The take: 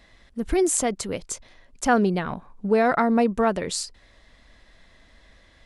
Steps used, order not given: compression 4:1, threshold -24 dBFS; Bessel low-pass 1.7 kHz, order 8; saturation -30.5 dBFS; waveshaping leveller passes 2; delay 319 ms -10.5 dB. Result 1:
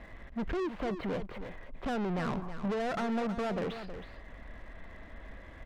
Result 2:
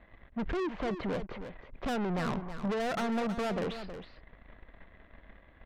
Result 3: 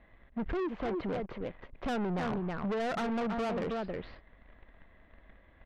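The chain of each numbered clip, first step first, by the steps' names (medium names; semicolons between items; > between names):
compression > saturation > Bessel low-pass > waveshaping leveller > delay; compression > waveshaping leveller > Bessel low-pass > saturation > delay; delay > waveshaping leveller > compression > Bessel low-pass > saturation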